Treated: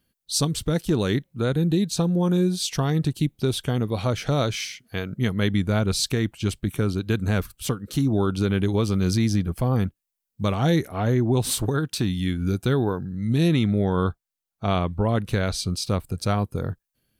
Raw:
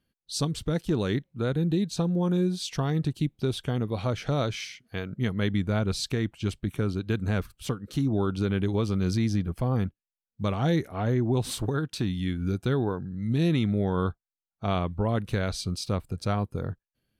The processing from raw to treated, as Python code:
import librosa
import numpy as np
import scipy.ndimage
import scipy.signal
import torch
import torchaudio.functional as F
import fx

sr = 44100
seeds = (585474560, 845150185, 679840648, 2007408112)

y = fx.high_shelf(x, sr, hz=7200.0, db=fx.steps((0.0, 10.5), (13.47, 5.0), (15.88, 10.5)))
y = y * 10.0 ** (4.0 / 20.0)